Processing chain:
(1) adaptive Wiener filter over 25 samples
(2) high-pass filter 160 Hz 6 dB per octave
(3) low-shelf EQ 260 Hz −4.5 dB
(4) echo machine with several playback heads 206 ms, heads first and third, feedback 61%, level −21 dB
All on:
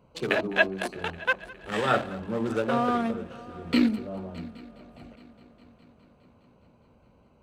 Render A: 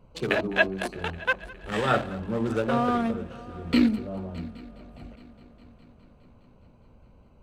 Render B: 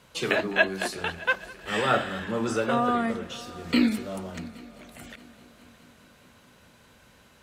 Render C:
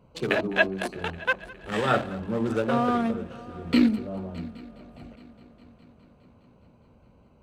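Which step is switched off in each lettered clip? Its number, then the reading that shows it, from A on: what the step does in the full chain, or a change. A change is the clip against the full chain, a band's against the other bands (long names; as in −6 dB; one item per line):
2, 125 Hz band +4.0 dB
1, 4 kHz band +2.5 dB
3, 125 Hz band +3.0 dB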